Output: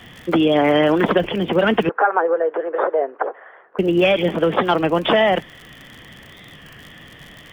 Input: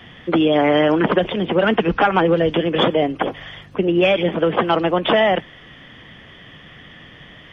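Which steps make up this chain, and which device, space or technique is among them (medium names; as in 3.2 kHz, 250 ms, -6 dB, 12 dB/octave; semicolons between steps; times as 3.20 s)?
warped LP (warped record 33 1/3 rpm, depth 100 cents; crackle 74 per s -30 dBFS; pink noise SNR 42 dB); 1.89–3.79 s: Chebyshev band-pass 420–1600 Hz, order 3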